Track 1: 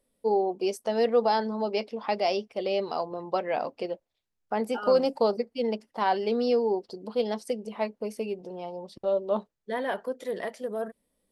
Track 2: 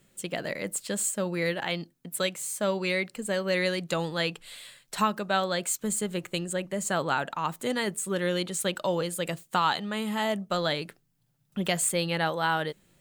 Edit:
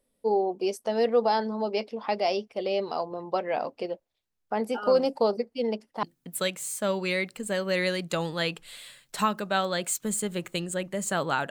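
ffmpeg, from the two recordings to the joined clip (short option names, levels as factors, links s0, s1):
-filter_complex "[0:a]apad=whole_dur=11.5,atrim=end=11.5,atrim=end=6.032[s0];[1:a]atrim=start=1.818:end=7.29[s1];[s0][s1]acrossfade=d=0.004:c1=hsin:c2=hsin"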